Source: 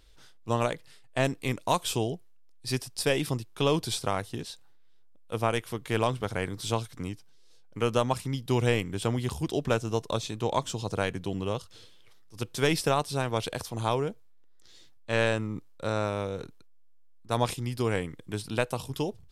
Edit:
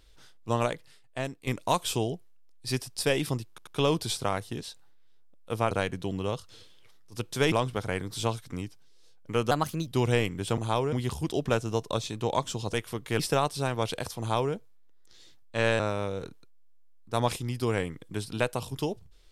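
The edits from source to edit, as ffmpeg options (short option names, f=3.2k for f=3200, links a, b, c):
-filter_complex "[0:a]asplit=13[a][b][c][d][e][f][g][h][i][j][k][l][m];[a]atrim=end=1.47,asetpts=PTS-STARTPTS,afade=t=out:st=0.65:d=0.82:silence=0.223872[n];[b]atrim=start=1.47:end=3.582,asetpts=PTS-STARTPTS,afade=t=in:d=0.004:c=hsin:silence=0.223872[o];[c]atrim=start=3.488:end=3.582[p];[d]atrim=start=3.488:end=5.532[q];[e]atrim=start=10.928:end=12.742[r];[f]atrim=start=5.988:end=7.984[s];[g]atrim=start=7.98:end=8.41,asetpts=PTS-STARTPTS,asetrate=53361,aresample=44100[t];[h]atrim=start=8.406:end=9.122[u];[i]atrim=start=13.728:end=14.082[v];[j]atrim=start=9.118:end=10.932[w];[k]atrim=start=5.528:end=5.992[x];[l]atrim=start=12.738:end=15.342[y];[m]atrim=start=15.968[z];[n][o]concat=n=2:v=0:a=1[aa];[aa][p]acrossfade=d=0.004:c1=hsin:c2=hsin[ab];[ab][q]acrossfade=d=0.004:c1=hsin:c2=hsin[ac];[ac][r]acrossfade=d=0.004:c1=hsin:c2=hsin[ad];[ad][s]acrossfade=d=0.004:c1=hsin:c2=hsin[ae];[ae][t]acrossfade=d=0.004:c1=hsin:c2=hsin[af];[af][u]acrossfade=d=0.004:c1=hsin:c2=hsin[ag];[ag][v]acrossfade=d=0.004:c1=hsin:c2=hsin[ah];[ah][w]acrossfade=d=0.004:c1=hsin:c2=hsin[ai];[ai][x]acrossfade=d=0.004:c1=hsin:c2=hsin[aj];[aj][y]acrossfade=d=0.004:c1=hsin:c2=hsin[ak];[ak][z]acrossfade=d=0.004:c1=hsin:c2=hsin"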